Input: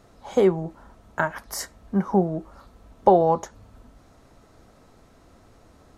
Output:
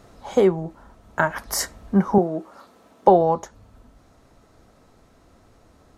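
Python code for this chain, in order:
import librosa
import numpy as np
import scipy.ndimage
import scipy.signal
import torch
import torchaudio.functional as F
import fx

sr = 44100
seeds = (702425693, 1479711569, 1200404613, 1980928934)

y = fx.highpass(x, sr, hz=250.0, slope=12, at=(2.18, 3.08))
y = fx.rider(y, sr, range_db=4, speed_s=0.5)
y = y * 10.0 ** (3.0 / 20.0)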